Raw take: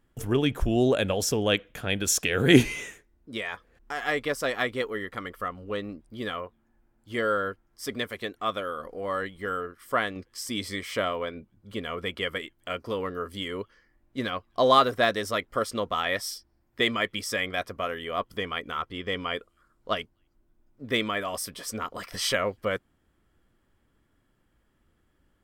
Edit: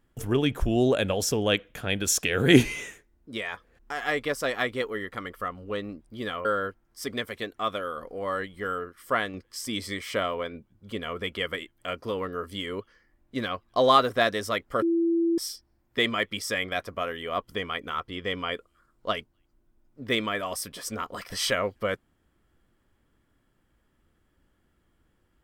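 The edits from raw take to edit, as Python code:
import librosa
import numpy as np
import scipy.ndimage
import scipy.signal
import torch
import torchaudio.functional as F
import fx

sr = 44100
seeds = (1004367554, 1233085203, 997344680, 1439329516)

y = fx.edit(x, sr, fx.cut(start_s=6.45, length_s=0.82),
    fx.bleep(start_s=15.64, length_s=0.56, hz=335.0, db=-20.5), tone=tone)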